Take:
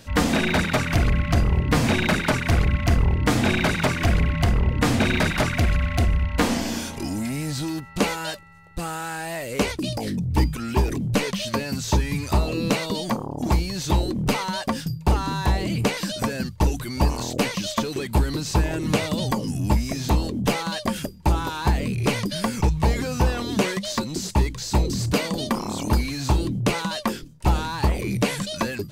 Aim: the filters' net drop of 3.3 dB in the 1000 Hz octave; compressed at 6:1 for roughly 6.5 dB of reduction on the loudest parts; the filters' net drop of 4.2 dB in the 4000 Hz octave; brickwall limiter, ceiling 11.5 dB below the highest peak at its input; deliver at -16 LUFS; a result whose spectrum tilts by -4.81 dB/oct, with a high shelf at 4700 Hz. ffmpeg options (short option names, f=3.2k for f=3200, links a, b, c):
-af "equalizer=f=1k:t=o:g=-4,equalizer=f=4k:t=o:g=-8.5,highshelf=f=4.7k:g=6.5,acompressor=threshold=-22dB:ratio=6,volume=15dB,alimiter=limit=-7.5dB:level=0:latency=1"